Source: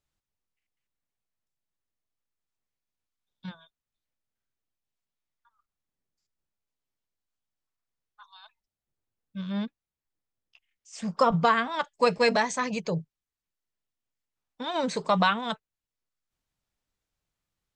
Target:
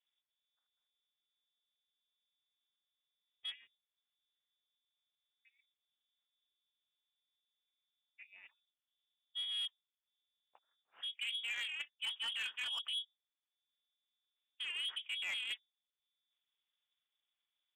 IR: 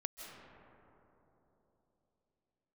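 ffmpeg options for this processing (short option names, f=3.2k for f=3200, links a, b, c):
-af "lowpass=f=3k:t=q:w=0.5098,lowpass=f=3k:t=q:w=0.6013,lowpass=f=3k:t=q:w=0.9,lowpass=f=3k:t=q:w=2.563,afreqshift=-3500,areverse,acompressor=threshold=-30dB:ratio=20,areverse,tremolo=f=290:d=0.667,highpass=f=1.3k:p=1,asoftclip=type=tanh:threshold=-32.5dB"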